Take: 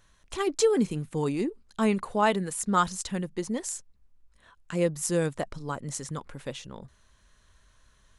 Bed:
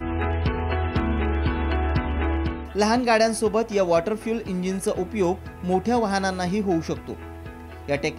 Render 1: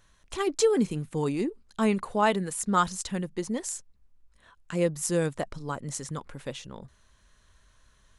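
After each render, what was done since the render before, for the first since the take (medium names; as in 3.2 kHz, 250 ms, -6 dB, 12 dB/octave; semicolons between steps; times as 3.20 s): no audible change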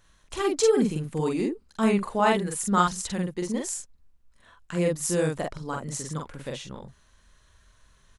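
doubling 45 ms -2 dB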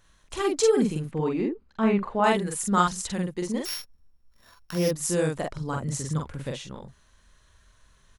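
1.11–2.24 s: low-pass 2.7 kHz; 3.65–4.91 s: sorted samples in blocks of 8 samples; 5.57–6.52 s: peaking EQ 84 Hz +11 dB 1.9 oct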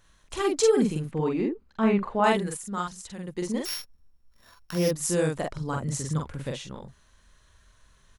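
2.11–3.73 s: dip -9.5 dB, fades 0.46 s logarithmic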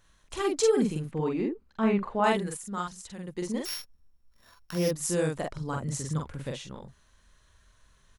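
trim -2.5 dB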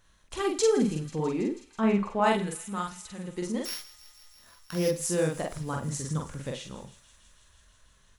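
feedback echo behind a high-pass 163 ms, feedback 81%, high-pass 2.2 kHz, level -16.5 dB; Schroeder reverb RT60 0.35 s, combs from 33 ms, DRR 12 dB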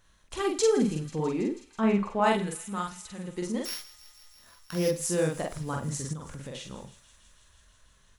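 6.13–6.55 s: compression 4:1, threshold -36 dBFS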